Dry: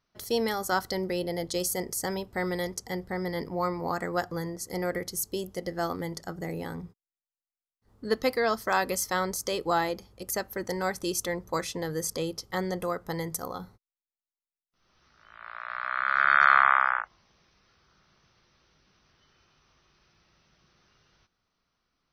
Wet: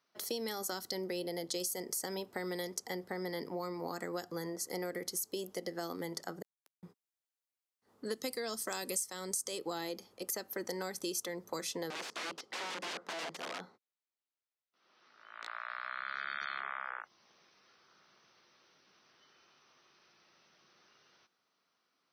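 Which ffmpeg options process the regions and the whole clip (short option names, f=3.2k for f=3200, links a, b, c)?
-filter_complex "[0:a]asettb=1/sr,asplit=3[a][b][c];[a]atrim=end=6.424[d];[b]atrim=start=6.42:end=6.83,asetpts=PTS-STARTPTS,afade=t=in:d=0.004:c=qsin,afade=t=out:st=0.406:d=0.004:c=qsin,highpass=150,equalizer=f=340:w=0.84:g=-10.5,acrusher=bits=3:mix=0:aa=0.5[e];[c]atrim=start=6.826[f];[d][e]acrossfade=d=0.004:c1=hsin:c2=qsin[g];[g][f]acrossfade=d=0.004:c1=qsin:c2=hsin,asettb=1/sr,asplit=3[h][i][j];[h]atrim=end=8.064[k];[i]atrim=start=8.06:end=9.59,asetpts=PTS-STARTPTS,afade=t=in:d=0.004:c=qsin,afade=t=out:st=1.526:d=0.004:c=qsin,equalizer=f=8.6k:t=o:w=0.68:g=13.5,bandreject=f=4.4k:w=30,aeval=exprs='val(0)+0.00224*(sin(2*PI*50*n/s)+sin(2*PI*2*50*n/s)/2+sin(2*PI*3*50*n/s)/3+sin(2*PI*4*50*n/s)/4+sin(2*PI*5*50*n/s)/5)':c=same[l];[j]atrim=start=9.586[m];[k][l]acrossfade=d=0.004:c1=hsin:c2=qsin[n];[n][m]acrossfade=d=0.004:c1=qsin:c2=hsin,asettb=1/sr,asplit=3[o][p][q];[o]atrim=end=11.904[r];[p]atrim=start=11.9:end=15.48,asetpts=PTS-STARTPTS,afade=t=in:d=0.004:c=qsin,afade=t=out:st=3.576:d=0.004:c=qsin,aeval=exprs='(mod(39.8*val(0)+1,2)-1)/39.8':c=same,highpass=180,lowpass=4.9k[s];[q]atrim=start=15.476[t];[r][s]acrossfade=d=0.004:c1=hsin:c2=qsin[u];[u][t]acrossfade=d=0.004:c1=qsin:c2=hsin,asettb=1/sr,asplit=3[v][w][x];[v]atrim=end=16.604[y];[w]atrim=start=16.6:end=17,asetpts=PTS-STARTPTS,afade=t=in:d=0.004:c=qsin,afade=t=out:st=0.396:d=0.004:c=qsin,lowpass=2.5k,equalizer=f=460:t=o:w=0.47:g=10[z];[x]atrim=start=16.996[aa];[y][z]acrossfade=d=0.004:c1=hsin:c2=qsin[ab];[ab][aa]acrossfade=d=0.004:c1=qsin:c2=hsin,acrossover=split=370|3000[ac][ad][ae];[ad]acompressor=threshold=-38dB:ratio=6[af];[ac][af][ae]amix=inputs=3:normalize=0,highpass=290,acompressor=threshold=-34dB:ratio=6"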